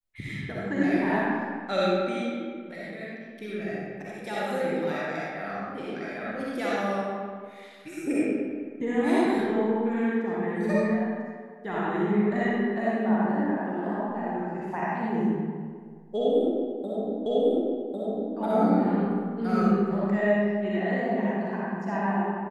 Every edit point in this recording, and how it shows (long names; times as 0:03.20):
0:17.26: the same again, the last 1.1 s